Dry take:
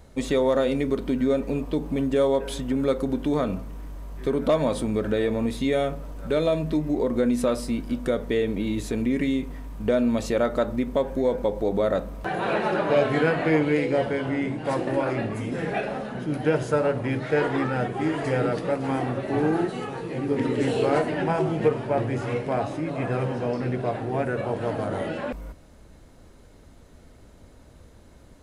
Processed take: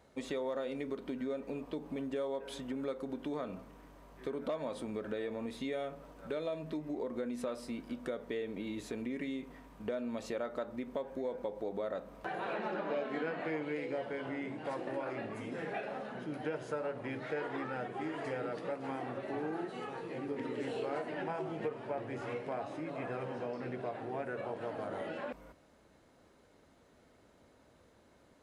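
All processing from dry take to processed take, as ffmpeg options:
-filter_complex "[0:a]asettb=1/sr,asplit=3[a][b][c];[a]atrim=end=12.574[d];[b]atrim=start=12.57:end=13.4,asetpts=PTS-STARTPTS,afade=t=in:d=0.004:c=qsin,afade=t=out:st=0.826:d=0.004:c=qsin,lowpass=7.9k,lowshelf=f=140:t=q:w=3:g=-11.5[e];[c]atrim=start=13.396[f];[d][e]acrossfade=d=0.004:c1=hsin:c2=qsin[g];[g][f]acrossfade=d=0.004:c1=qsin:c2=hsin,highpass=f=370:p=1,highshelf=f=5.1k:g=-8.5,acompressor=threshold=-30dB:ratio=2.5,volume=-6.5dB"

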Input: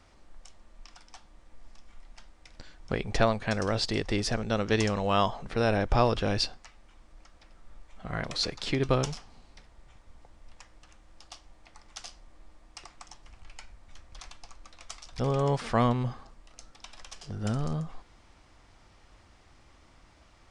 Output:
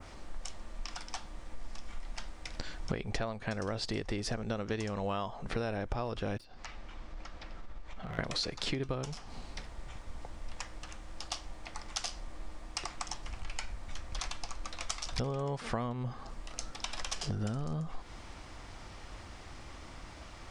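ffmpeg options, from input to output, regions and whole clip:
-filter_complex "[0:a]asettb=1/sr,asplit=3[a][b][c];[a]atrim=end=6.374[d];[b]atrim=start=6.37:end=8.19,asetpts=PTS-STARTPTS,afade=t=in:d=0.004:c=qsin,afade=t=out:st=1.816:d=0.004:c=qsin,lowpass=5k,aeval=exprs='clip(val(0),-1,0.0168)':c=same,acompressor=threshold=-47dB:ratio=16:attack=3.2:release=140:knee=1:detection=peak[e];[c]atrim=start=8.186[f];[d][e]acrossfade=d=0.004:c1=hsin:c2=qsin[g];[g][f]acrossfade=d=0.004:c1=qsin:c2=hsin,adynamicequalizer=threshold=0.00501:dfrequency=4300:dqfactor=0.71:tfrequency=4300:tqfactor=0.71:attack=5:release=100:ratio=0.375:range=1.5:mode=cutabove:tftype=bell,acompressor=threshold=-41dB:ratio=16,volume=10dB"

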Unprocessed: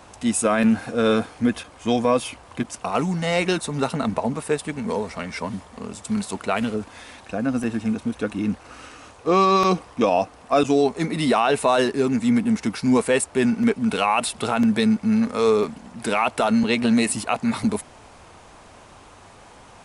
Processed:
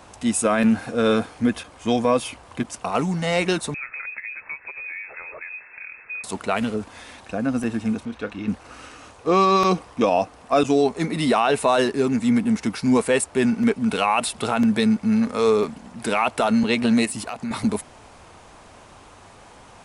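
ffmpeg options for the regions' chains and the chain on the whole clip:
-filter_complex "[0:a]asettb=1/sr,asplit=3[a][b][c];[a]atrim=end=3.744[d];[b]atrim=start=3.74:end=6.24,asetpts=PTS-STARTPTS,afade=t=in:d=0.004:c=qsin,afade=t=out:st=2.496:d=0.004:c=qsin,acompressor=threshold=-34dB:ratio=2.5:attack=3.2:release=140:knee=1:detection=peak,lowpass=f=2.3k:t=q:w=0.5098,lowpass=f=2.3k:t=q:w=0.6013,lowpass=f=2.3k:t=q:w=0.9,lowpass=f=2.3k:t=q:w=2.563,afreqshift=-2700[e];[c]atrim=start=6.236[f];[d][e]acrossfade=d=0.004:c1=hsin:c2=qsin[g];[g][f]acrossfade=d=0.004:c1=qsin:c2=hsin,asettb=1/sr,asplit=3[h][i][j];[h]atrim=end=8.054[k];[i]atrim=start=8.05:end=8.48,asetpts=PTS-STARTPTS,afade=t=in:d=0.004:c=qsin,afade=t=out:st=0.426:d=0.004:c=qsin,lowpass=4.5k,equalizer=f=200:w=0.39:g=-6.5,asplit=2[l][m];[m]adelay=30,volume=-13dB[n];[l][n]amix=inputs=2:normalize=0,atrim=end_sample=18963[o];[j]atrim=start=8.476[p];[k][o]acrossfade=d=0.004:c1=hsin:c2=qsin[q];[q][p]acrossfade=d=0.004:c1=qsin:c2=hsin,asettb=1/sr,asplit=3[r][s][t];[r]atrim=end=17.054[u];[s]atrim=start=17.05:end=17.51,asetpts=PTS-STARTPTS,afade=t=in:d=0.004:c=qsin,afade=t=out:st=0.456:d=0.004:c=qsin,acompressor=threshold=-26dB:ratio=4:attack=3.2:release=140:knee=1:detection=peak,asoftclip=type=hard:threshold=-20.5dB[v];[t]atrim=start=17.506[w];[u][v]acrossfade=d=0.004:c1=hsin:c2=qsin[x];[x][w]acrossfade=d=0.004:c1=qsin:c2=hsin"

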